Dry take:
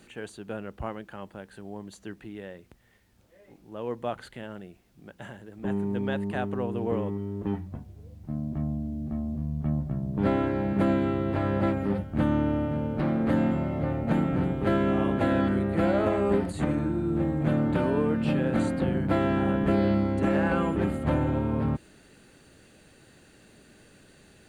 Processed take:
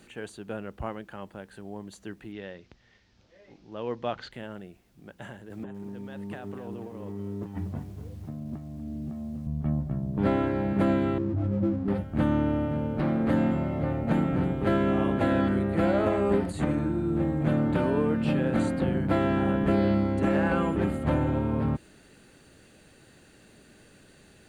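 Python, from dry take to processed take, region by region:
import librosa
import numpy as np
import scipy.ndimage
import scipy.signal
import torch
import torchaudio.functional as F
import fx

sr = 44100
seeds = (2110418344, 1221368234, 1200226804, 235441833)

y = fx.chain(x, sr, fx.steep_lowpass(hz=5700.0, slope=36),
    fx.high_shelf(hz=3400.0, db=10.0), at=(2.32, 4.32))
y = fx.chain(y, sr, fx.highpass(hz=72.0, slope=24),
    fx.over_compress(threshold_db=-37.0, ratio=-1.0),
    fx.echo_crushed(ms=244, feedback_pct=35, bits=9, wet_db=-11.5), at=(5.5, 9.47))
y = fx.chain(y, sr, fx.spec_expand(power=3.0),
    fx.backlash(play_db=-37.5), at=(11.18, 11.88))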